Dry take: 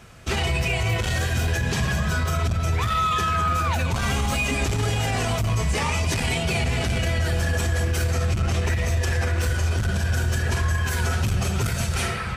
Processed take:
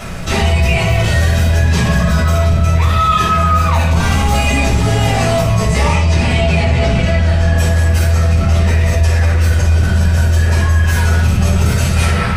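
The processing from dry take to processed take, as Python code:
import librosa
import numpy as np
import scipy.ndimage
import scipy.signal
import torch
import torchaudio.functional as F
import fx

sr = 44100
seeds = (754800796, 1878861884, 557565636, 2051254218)

y = fx.air_absorb(x, sr, metres=67.0, at=(5.93, 7.58))
y = fx.room_shoebox(y, sr, seeds[0], volume_m3=480.0, walls='furnished', distance_m=6.7)
y = fx.env_flatten(y, sr, amount_pct=50)
y = y * librosa.db_to_amplitude(-4.5)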